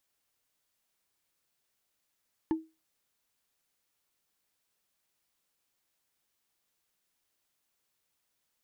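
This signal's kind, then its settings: wood hit, lowest mode 320 Hz, decay 0.26 s, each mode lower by 10 dB, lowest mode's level -22 dB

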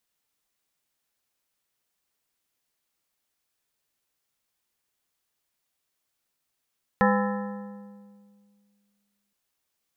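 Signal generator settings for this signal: metal hit plate, length 2.32 s, lowest mode 203 Hz, modes 7, decay 2.23 s, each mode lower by 1.5 dB, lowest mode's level -20 dB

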